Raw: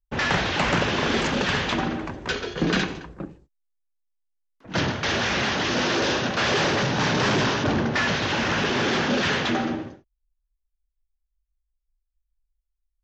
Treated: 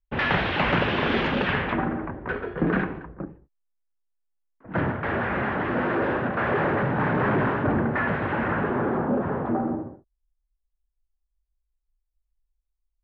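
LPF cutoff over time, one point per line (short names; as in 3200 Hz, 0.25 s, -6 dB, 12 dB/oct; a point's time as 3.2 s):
LPF 24 dB/oct
1.37 s 3200 Hz
1.89 s 1800 Hz
8.45 s 1800 Hz
9.1 s 1100 Hz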